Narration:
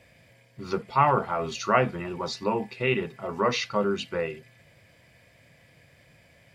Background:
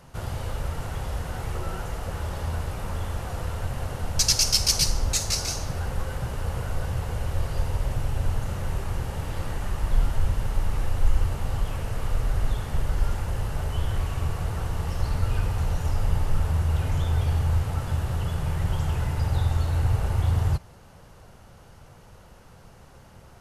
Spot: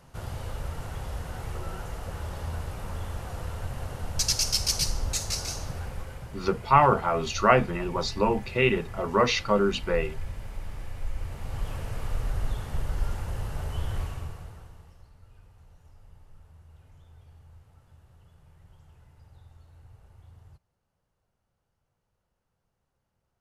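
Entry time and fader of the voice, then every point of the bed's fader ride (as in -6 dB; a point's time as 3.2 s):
5.75 s, +2.5 dB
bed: 5.68 s -4.5 dB
6.33 s -12 dB
11.14 s -12 dB
11.69 s -4.5 dB
14.02 s -4.5 dB
15.12 s -29.5 dB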